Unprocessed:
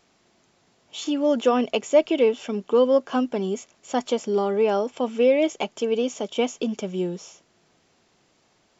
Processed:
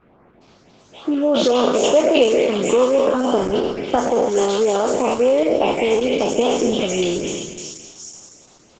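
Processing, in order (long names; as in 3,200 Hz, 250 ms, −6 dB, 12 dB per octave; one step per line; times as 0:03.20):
peak hold with a decay on every bin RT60 1.51 s
notch filter 1,800 Hz, Q 16
0:03.95–0:04.41: low shelf with overshoot 110 Hz +10.5 dB, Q 1.5
harmonic and percussive parts rebalanced percussive +8 dB
dynamic equaliser 140 Hz, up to −6 dB, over −42 dBFS, Q 1.8
downward compressor 2 to 1, threshold −23 dBFS, peak gain reduction 7.5 dB
auto-filter notch saw up 3.5 Hz 570–5,000 Hz
harmonic generator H 2 −31 dB, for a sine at −8.5 dBFS
three-band delay without the direct sound lows, mids, highs 410/790 ms, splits 1,900/5,800 Hz
level +7.5 dB
Opus 12 kbit/s 48,000 Hz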